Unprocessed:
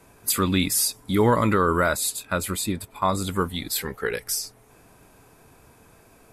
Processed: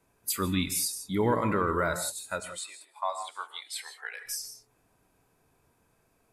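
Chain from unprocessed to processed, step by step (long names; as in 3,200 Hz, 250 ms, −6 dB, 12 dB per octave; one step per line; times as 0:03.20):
0:02.40–0:04.25: elliptic band-pass filter 640–9,800 Hz, stop band 70 dB
reverb whose tail is shaped and stops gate 190 ms rising, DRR 7.5 dB
noise reduction from a noise print of the clip's start 9 dB
level −7 dB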